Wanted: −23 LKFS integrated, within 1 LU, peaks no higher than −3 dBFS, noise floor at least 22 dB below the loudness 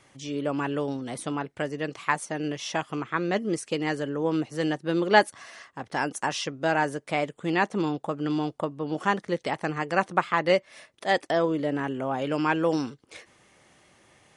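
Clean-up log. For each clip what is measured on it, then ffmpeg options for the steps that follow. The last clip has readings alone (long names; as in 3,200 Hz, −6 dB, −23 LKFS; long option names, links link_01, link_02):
integrated loudness −27.5 LKFS; sample peak −4.0 dBFS; target loudness −23.0 LKFS
→ -af "volume=4.5dB,alimiter=limit=-3dB:level=0:latency=1"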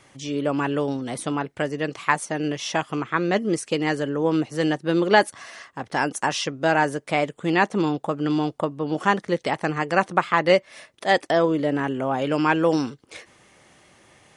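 integrated loudness −23.5 LKFS; sample peak −3.0 dBFS; background noise floor −59 dBFS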